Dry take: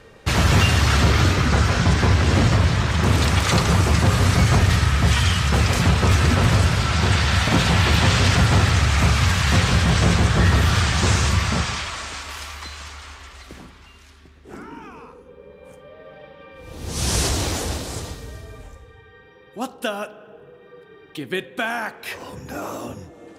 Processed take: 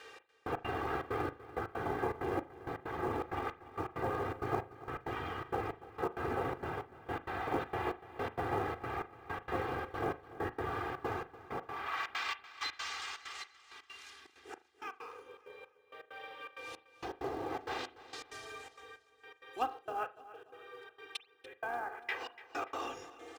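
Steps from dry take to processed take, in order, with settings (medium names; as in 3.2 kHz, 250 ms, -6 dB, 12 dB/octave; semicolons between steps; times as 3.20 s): octave divider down 2 oct, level +1 dB; frequency weighting A; low-pass that closes with the level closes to 640 Hz, closed at -22.5 dBFS; bass shelf 480 Hz -7.5 dB; comb 2.5 ms, depth 73%; in parallel at -7 dB: short-mantissa float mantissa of 2-bit; on the sum: trance gate "xx...x.xxxx." 163 bpm -60 dB; feedback delay 290 ms, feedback 40%, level -17 dB; on a send at -14 dB: reverberation, pre-delay 38 ms; on the sum: trim -6.5 dB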